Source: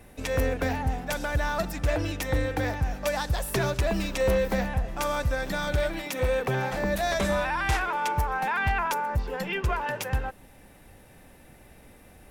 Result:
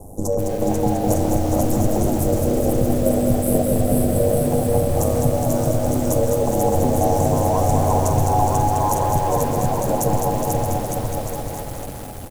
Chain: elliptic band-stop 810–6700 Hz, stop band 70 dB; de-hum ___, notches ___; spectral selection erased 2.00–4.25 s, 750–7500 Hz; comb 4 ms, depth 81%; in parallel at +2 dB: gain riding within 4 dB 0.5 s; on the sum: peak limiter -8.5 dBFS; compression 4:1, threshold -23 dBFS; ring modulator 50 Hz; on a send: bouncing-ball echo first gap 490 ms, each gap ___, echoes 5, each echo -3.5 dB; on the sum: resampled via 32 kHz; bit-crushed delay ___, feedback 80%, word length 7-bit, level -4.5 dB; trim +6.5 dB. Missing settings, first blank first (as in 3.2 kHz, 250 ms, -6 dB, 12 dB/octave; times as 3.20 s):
89.86 Hz, 5, 0.85×, 208 ms